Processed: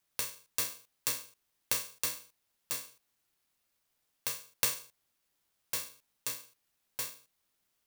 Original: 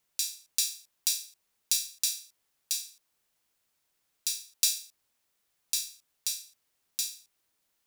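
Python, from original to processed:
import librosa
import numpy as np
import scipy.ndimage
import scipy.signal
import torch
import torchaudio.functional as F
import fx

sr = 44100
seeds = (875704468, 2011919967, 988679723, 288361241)

y = scipy.signal.sosfilt(scipy.signal.cheby2(4, 80, [1000.0, 2500.0], 'bandstop', fs=sr, output='sos'), x)
y = (np.kron(y[::3], np.eye(3)[0]) * 3)[:len(y)]
y = F.gain(torch.from_numpy(y), -5.0).numpy()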